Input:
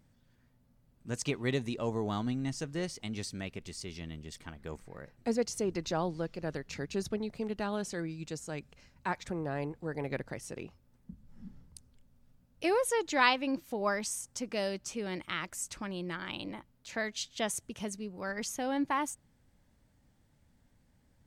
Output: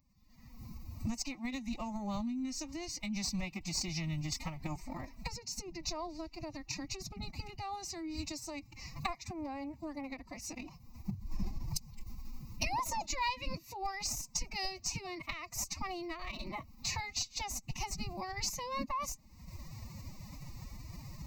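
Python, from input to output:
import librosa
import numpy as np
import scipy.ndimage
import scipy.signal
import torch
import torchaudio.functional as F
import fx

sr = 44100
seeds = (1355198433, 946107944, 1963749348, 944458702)

p1 = fx.recorder_agc(x, sr, target_db=-18.5, rise_db_per_s=47.0, max_gain_db=30)
p2 = fx.high_shelf(p1, sr, hz=3400.0, db=5.0)
p3 = fx.schmitt(p2, sr, flips_db=-18.0)
p4 = p2 + (p3 * librosa.db_to_amplitude(-10.0))
p5 = fx.pitch_keep_formants(p4, sr, semitones=11.5)
p6 = fx.peak_eq(p5, sr, hz=1700.0, db=-14.5, octaves=0.21)
p7 = fx.fixed_phaser(p6, sr, hz=2200.0, stages=8)
y = p7 * librosa.db_to_amplitude(-6.5)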